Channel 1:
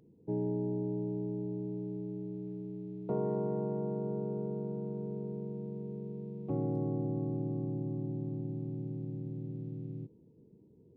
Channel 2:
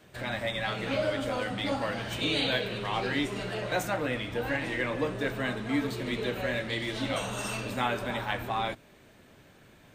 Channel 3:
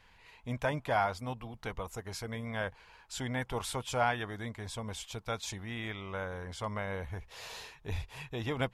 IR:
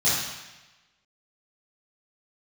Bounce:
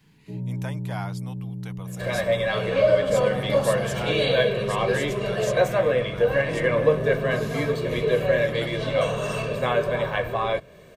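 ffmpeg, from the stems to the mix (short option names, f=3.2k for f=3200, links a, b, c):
-filter_complex "[0:a]aemphasis=mode=reproduction:type=bsi,volume=-15dB,asplit=2[a][b];[b]volume=-4.5dB[c];[1:a]equalizer=f=470:w=1.2:g=7.5,aecho=1:1:1.8:0.64,adynamicequalizer=threshold=0.00562:dfrequency=3900:dqfactor=0.7:tfrequency=3900:tqfactor=0.7:attack=5:release=100:ratio=0.375:range=3.5:mode=cutabove:tftype=highshelf,adelay=1850,volume=2.5dB[d];[2:a]crystalizer=i=3:c=0,volume=-6.5dB[e];[3:a]atrim=start_sample=2205[f];[c][f]afir=irnorm=-1:irlink=0[g];[a][d][e][g]amix=inputs=4:normalize=0"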